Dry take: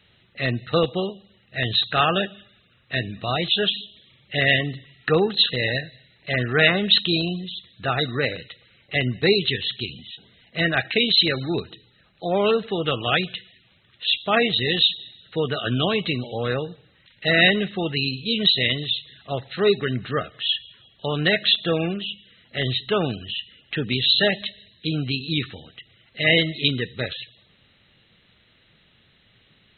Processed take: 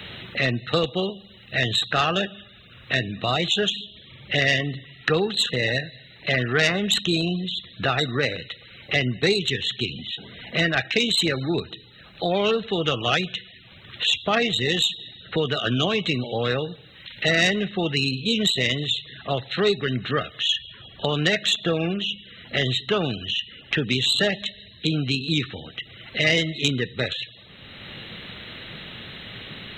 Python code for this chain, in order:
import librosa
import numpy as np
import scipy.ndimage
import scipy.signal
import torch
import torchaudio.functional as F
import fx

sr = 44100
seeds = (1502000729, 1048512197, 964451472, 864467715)

y = fx.self_delay(x, sr, depth_ms=0.061)
y = fx.band_squash(y, sr, depth_pct=70)